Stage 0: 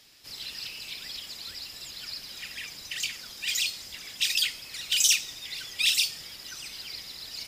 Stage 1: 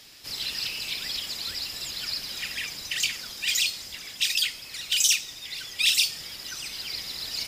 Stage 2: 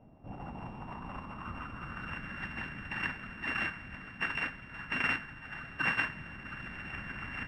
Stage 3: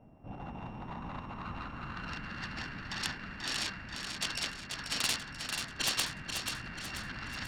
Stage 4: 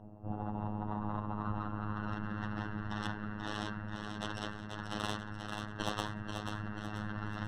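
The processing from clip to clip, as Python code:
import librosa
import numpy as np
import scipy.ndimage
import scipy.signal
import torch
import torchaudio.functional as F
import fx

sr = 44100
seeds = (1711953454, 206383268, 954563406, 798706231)

y1 = fx.rider(x, sr, range_db=5, speed_s=2.0)
y1 = F.gain(torch.from_numpy(y1), 2.0).numpy()
y2 = np.r_[np.sort(y1[:len(y1) // 16 * 16].reshape(-1, 16), axis=1).ravel(), y1[len(y1) // 16 * 16:]]
y2 = fx.filter_sweep_lowpass(y2, sr, from_hz=680.0, to_hz=1700.0, start_s=0.09, end_s=2.4, q=3.7)
y2 = fx.low_shelf_res(y2, sr, hz=320.0, db=11.5, q=1.5)
y2 = F.gain(torch.from_numpy(y2), -5.5).numpy()
y3 = fx.self_delay(y2, sr, depth_ms=0.48)
y3 = fx.echo_feedback(y3, sr, ms=486, feedback_pct=46, wet_db=-6)
y4 = fx.robotise(y3, sr, hz=105.0)
y4 = scipy.signal.lfilter(np.full(19, 1.0 / 19), 1.0, y4)
y4 = F.gain(torch.from_numpy(y4), 8.0).numpy()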